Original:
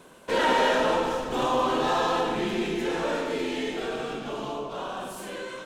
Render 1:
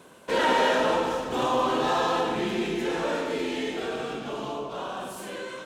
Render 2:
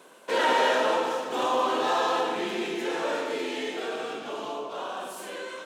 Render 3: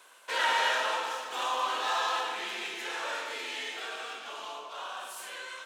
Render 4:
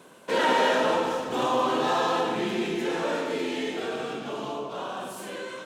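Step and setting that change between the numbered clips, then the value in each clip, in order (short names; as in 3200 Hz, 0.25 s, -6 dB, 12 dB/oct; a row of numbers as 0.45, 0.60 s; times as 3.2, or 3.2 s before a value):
HPF, cutoff: 48, 330, 1100, 120 Hz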